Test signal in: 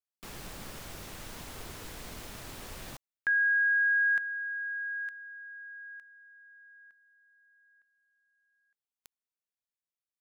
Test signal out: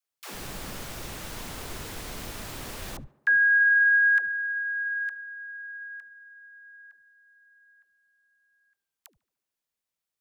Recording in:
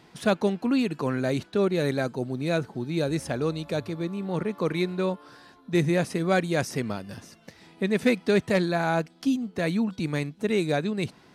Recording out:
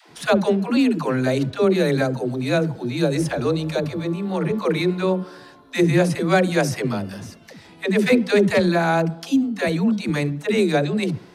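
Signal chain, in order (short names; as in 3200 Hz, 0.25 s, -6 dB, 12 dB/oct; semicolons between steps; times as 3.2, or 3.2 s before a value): dispersion lows, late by 0.111 s, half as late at 330 Hz; tape echo 71 ms, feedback 71%, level -19.5 dB, low-pass 1900 Hz; gain +6 dB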